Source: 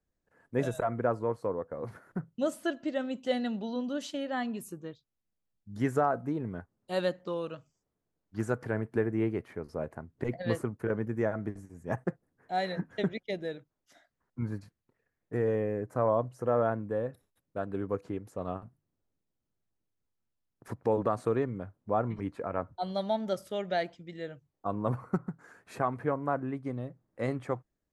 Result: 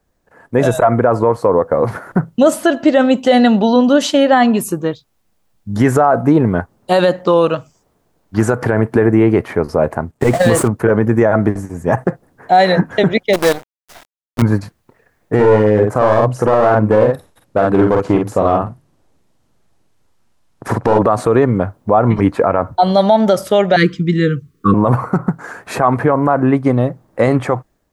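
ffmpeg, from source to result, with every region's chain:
ffmpeg -i in.wav -filter_complex "[0:a]asettb=1/sr,asplit=3[link_01][link_02][link_03];[link_01]atrim=end=10.114[link_04];[link_02]atrim=start=10.11:end=10.68,asetpts=PTS-STARTPTS,afade=type=in:duration=0.004:curve=qsin,afade=type=out:start_time=0.566:duration=0.004:curve=qsin,aeval=exprs='val(0)+0.5*0.00794*sgn(val(0))':channel_layout=same,agate=range=-41dB:threshold=-42dB:ratio=16:release=100:detection=peak,equalizer=frequency=8100:width_type=o:width=0.57:gain=9[link_05];[link_03]atrim=start=10.676[link_06];[link_04][link_05]acrossfade=duration=0.004:curve1=hsin:curve2=qsin[link_07];[link_07][link_06]acrossfade=duration=0.004:curve1=qsin:curve2=hsin,asettb=1/sr,asplit=3[link_08][link_09][link_10];[link_08]atrim=end=13.334[link_11];[link_09]atrim=start=13.33:end=14.42,asetpts=PTS-STARTPTS,afade=type=in:duration=0.004:curve=qsin,afade=type=out:start_time=1.086:duration=0.004:curve=qsin,highpass=frequency=190:poles=1,acrusher=bits=7:dc=4:mix=0:aa=0.000001[link_12];[link_10]atrim=start=14.416[link_13];[link_11][link_12]acrossfade=duration=0.004:curve1=hsin:curve2=qsin[link_14];[link_14][link_13]acrossfade=duration=0.004:curve1=qsin:curve2=hsin,asettb=1/sr,asplit=3[link_15][link_16][link_17];[link_15]atrim=end=15.344[link_18];[link_16]atrim=start=15.34:end=20.99,asetpts=PTS-STARTPTS,afade=type=in:duration=0.004:curve=qsin,afade=type=out:start_time=5.646:duration=0.004:curve=qsin,aeval=exprs='clip(val(0),-1,0.0316)':channel_layout=same,lowpass=11000,asplit=2[link_19][link_20];[link_20]adelay=47,volume=-4.5dB[link_21];[link_19][link_21]amix=inputs=2:normalize=0,atrim=end_sample=249165[link_22];[link_17]atrim=start=20.986[link_23];[link_18][link_22]acrossfade=duration=0.004:curve1=hsin:curve2=qsin[link_24];[link_24][link_23]acrossfade=duration=0.004:curve1=qsin:curve2=hsin,asettb=1/sr,asplit=3[link_25][link_26][link_27];[link_25]atrim=end=23.764[link_28];[link_26]atrim=start=23.76:end=24.74,asetpts=PTS-STARTPTS,afade=type=in:duration=0.004:curve=qsin,afade=type=out:start_time=0.976:duration=0.004:curve=qsin,asuperstop=centerf=720:order=20:qfactor=1.2,equalizer=frequency=170:width=0.76:gain=10[link_29];[link_27]atrim=start=24.736[link_30];[link_28][link_29]acrossfade=duration=0.004:curve1=hsin:curve2=qsin[link_31];[link_31][link_30]acrossfade=duration=0.004:curve1=qsin:curve2=hsin,dynaudnorm=framelen=520:gausssize=3:maxgain=5dB,equalizer=frequency=850:width_type=o:width=1.4:gain=5.5,alimiter=level_in=18dB:limit=-1dB:release=50:level=0:latency=1,volume=-1dB" out.wav

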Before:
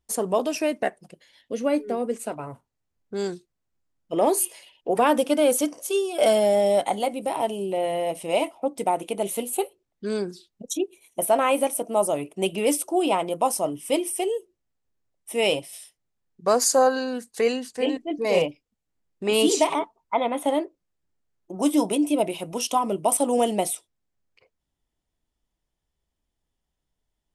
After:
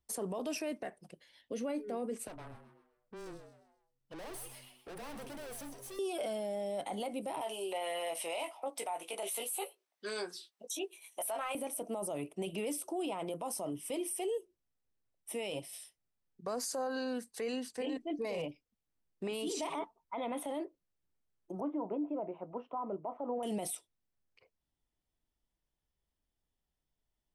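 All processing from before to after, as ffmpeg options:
ffmpeg -i in.wav -filter_complex "[0:a]asettb=1/sr,asplit=3[link_01][link_02][link_03];[link_01]atrim=end=2.274[link_04];[link_02]atrim=start=2.27:end=5.99,asetpts=PTS-STARTPTS,afade=type=in:duration=0.004:curve=qsin,afade=type=out:start_time=3.716:duration=0.004:curve=qsin,aeval=exprs='(tanh(89.1*val(0)+0.45)-tanh(0.45))/89.1':channel_layout=same,afreqshift=-13,asplit=5[link_05][link_06][link_07][link_08][link_09];[link_06]adelay=129,afreqshift=120,volume=-10dB[link_10];[link_07]adelay=258,afreqshift=240,volume=-18.2dB[link_11];[link_08]adelay=387,afreqshift=360,volume=-26.4dB[link_12];[link_09]adelay=516,afreqshift=480,volume=-34.5dB[link_13];[link_05][link_10][link_11][link_12][link_13]amix=inputs=5:normalize=0,atrim=end_sample=164052[link_14];[link_03]atrim=start=5.986[link_15];[link_04][link_14]acrossfade=duration=0.004:curve1=hsin:curve2=qsin[link_16];[link_16][link_15]acrossfade=duration=0.004:curve1=qsin:curve2=hsin,asettb=1/sr,asplit=3[link_17][link_18][link_19];[link_17]atrim=end=7.414[link_20];[link_18]atrim=start=7.41:end=11.55,asetpts=PTS-STARTPTS,afade=type=in:duration=0.004:curve=qsin,afade=type=out:start_time=4.136:duration=0.004:curve=qsin,highpass=770,acontrast=83,asplit=2[link_21][link_22];[link_22]adelay=18,volume=-7dB[link_23];[link_21][link_23]amix=inputs=2:normalize=0,atrim=end_sample=182574[link_24];[link_19]atrim=start=11.546[link_25];[link_20][link_24]acrossfade=duration=0.004:curve1=hsin:curve2=qsin[link_26];[link_26][link_25]acrossfade=duration=0.004:curve1=qsin:curve2=hsin,asettb=1/sr,asplit=3[link_27][link_28][link_29];[link_27]atrim=end=21.604[link_30];[link_28]atrim=start=21.6:end=23.43,asetpts=PTS-STARTPTS,afade=type=in:duration=0.004:curve=qsin,afade=type=out:start_time=1.826:duration=0.004:curve=qsin,lowpass=frequency=1300:width=0.5412,lowpass=frequency=1300:width=1.3066,lowshelf=frequency=410:gain=-9.5[link_31];[link_29]atrim=start=23.426[link_32];[link_30][link_31]acrossfade=duration=0.004:curve1=hsin:curve2=qsin[link_33];[link_33][link_32]acrossfade=duration=0.004:curve1=qsin:curve2=hsin,bandreject=frequency=6900:width=11,acrossover=split=210[link_34][link_35];[link_35]acompressor=threshold=-22dB:ratio=6[link_36];[link_34][link_36]amix=inputs=2:normalize=0,alimiter=limit=-23dB:level=0:latency=1:release=17,volume=-6.5dB" out.wav

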